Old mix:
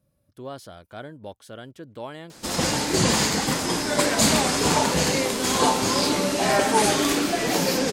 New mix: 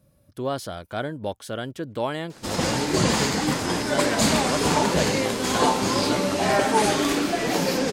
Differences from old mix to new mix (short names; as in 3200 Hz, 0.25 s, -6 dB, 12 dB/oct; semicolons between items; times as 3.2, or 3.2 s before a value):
speech +9.0 dB; background: add high shelf 4800 Hz -6 dB